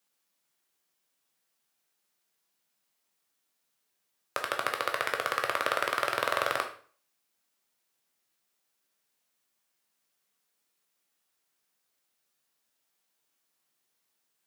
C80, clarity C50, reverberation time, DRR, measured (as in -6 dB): 14.5 dB, 9.5 dB, 0.45 s, 3.0 dB